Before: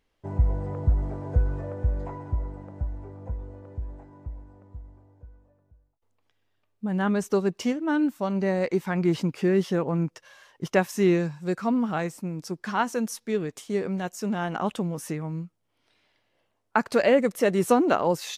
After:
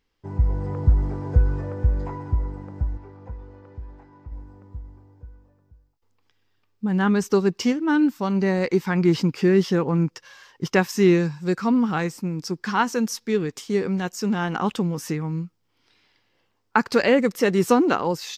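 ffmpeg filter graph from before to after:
-filter_complex "[0:a]asettb=1/sr,asplit=3[s0][s1][s2];[s0]atrim=end=2.974[s3];[s1]atrim=start=2.97:end=4.32,asetpts=PTS-STARTPTS,afade=t=in:d=0.004:c=qsin,afade=t=out:st=1.346:d=0.004:c=qsin,lowpass=5100,lowshelf=f=480:g=-8.5[s4];[s2]atrim=start=4.316[s5];[s3][s4]acrossfade=d=0.004:c1=hsin:c2=qsin[s6];[s6][s5]acrossfade=d=0.004:c1=qsin:c2=hsin,equalizer=f=630:t=o:w=0.33:g=-11,equalizer=f=5000:t=o:w=0.33:g=6,equalizer=f=10000:t=o:w=0.33:g=-10,dynaudnorm=f=120:g=9:m=1.78"

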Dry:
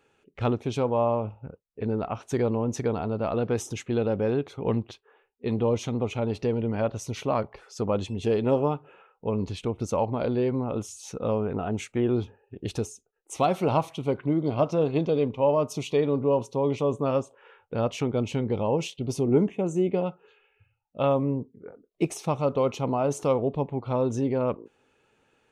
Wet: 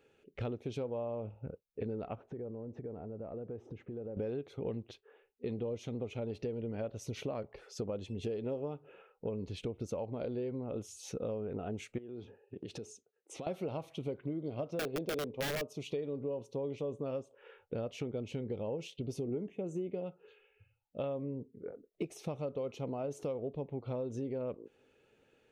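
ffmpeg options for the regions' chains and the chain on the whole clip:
-filter_complex "[0:a]asettb=1/sr,asplit=3[s0][s1][s2];[s0]atrim=end=2.154[s3];[s1]atrim=start=2.15:end=4.17,asetpts=PTS-STARTPTS,afade=t=in:d=0.004:c=qsin,afade=t=out:st=2.016:d=0.004:c=qsin,lowpass=1100,acompressor=threshold=0.0112:ratio=6:attack=3.2:release=140:knee=1:detection=peak[s4];[s2]atrim=start=4.166[s5];[s3][s4]acrossfade=d=0.004:c1=hsin:c2=qsin[s6];[s6][s5]acrossfade=d=0.004:c1=qsin:c2=hsin,asettb=1/sr,asplit=3[s7][s8][s9];[s7]atrim=end=11.984[s10];[s8]atrim=start=11.98:end=13.47,asetpts=PTS-STARTPTS,afade=t=in:d=0.004:c=qsin,afade=t=out:st=1.486:d=0.004:c=qsin,acompressor=threshold=0.0158:ratio=20:attack=3.2:release=140:knee=1:detection=peak,highpass=130,lowpass=7900[s11];[s9]atrim=start=13.466[s12];[s10][s11]acrossfade=d=0.004:c1=hsin:c2=qsin[s13];[s13][s12]acrossfade=d=0.004:c1=qsin:c2=hsin,asettb=1/sr,asplit=3[s14][s15][s16];[s14]atrim=end=14.794[s17];[s15]atrim=start=14.79:end=15.73,asetpts=PTS-STARTPTS,afade=t=in:d=0.004:c=qsin,afade=t=out:st=0.936:d=0.004:c=qsin,equalizer=f=490:w=0.62:g=7,aeval=exprs='(mod(3.76*val(0)+1,2)-1)/3.76':c=same[s18];[s16]atrim=start=15.726[s19];[s17][s18]acrossfade=d=0.004:c1=hsin:c2=qsin[s20];[s20][s19]acrossfade=d=0.004:c1=qsin:c2=hsin,equalizer=f=500:t=o:w=1:g=5,equalizer=f=1000:t=o:w=1:g=-8,equalizer=f=8000:t=o:w=1:g=-5,acompressor=threshold=0.0224:ratio=6,volume=0.75"

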